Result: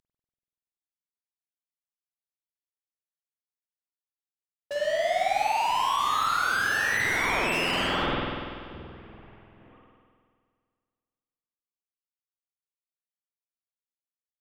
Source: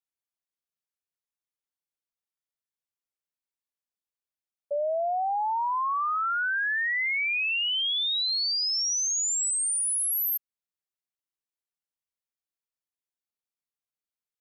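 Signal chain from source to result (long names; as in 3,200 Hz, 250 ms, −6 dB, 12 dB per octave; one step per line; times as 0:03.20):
variable-slope delta modulation 16 kbit/s
treble cut that deepens with the level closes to 1,600 Hz, closed at −25 dBFS
automatic gain control gain up to 10 dB
gain into a clipping stage and back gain 31 dB
spring reverb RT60 2 s, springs 48 ms, chirp 80 ms, DRR −5 dB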